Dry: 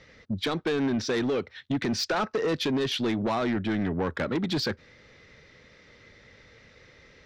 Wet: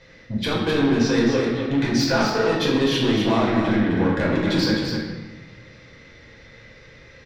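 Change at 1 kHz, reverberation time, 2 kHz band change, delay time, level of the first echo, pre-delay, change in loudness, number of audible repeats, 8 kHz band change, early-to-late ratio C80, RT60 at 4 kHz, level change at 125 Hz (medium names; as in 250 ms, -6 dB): +6.5 dB, 1.1 s, +7.5 dB, 257 ms, -6.0 dB, 3 ms, +7.5 dB, 1, +6.0 dB, 1.5 dB, 0.90 s, +9.0 dB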